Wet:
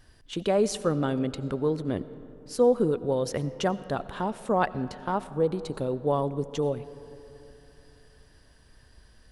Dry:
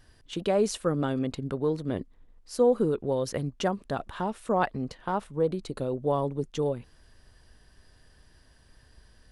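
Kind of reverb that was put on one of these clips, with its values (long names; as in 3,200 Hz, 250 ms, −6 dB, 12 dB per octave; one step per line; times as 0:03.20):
comb and all-pass reverb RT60 3.3 s, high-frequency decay 0.4×, pre-delay 50 ms, DRR 15.5 dB
level +1 dB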